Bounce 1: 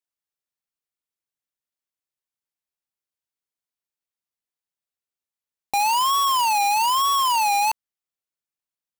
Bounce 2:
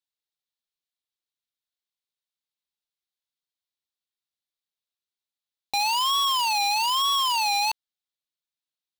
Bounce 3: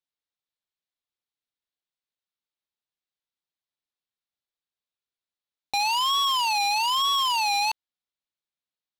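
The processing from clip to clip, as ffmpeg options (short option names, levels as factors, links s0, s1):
-af "equalizer=f=3800:w=1.6:g=12.5,volume=0.501"
-af "adynamicsmooth=sensitivity=6:basefreq=5800"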